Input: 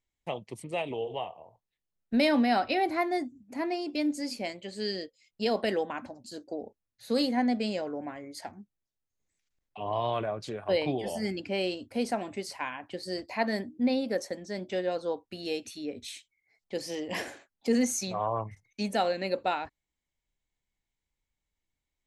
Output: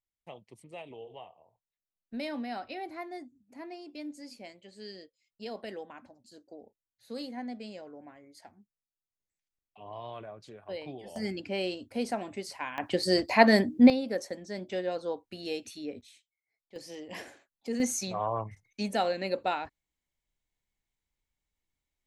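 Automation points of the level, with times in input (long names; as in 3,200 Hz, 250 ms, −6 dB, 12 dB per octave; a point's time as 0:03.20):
−12 dB
from 0:11.16 −2 dB
from 0:12.78 +9.5 dB
from 0:13.90 −2 dB
from 0:16.01 −15 dB
from 0:16.76 −8 dB
from 0:17.80 −1 dB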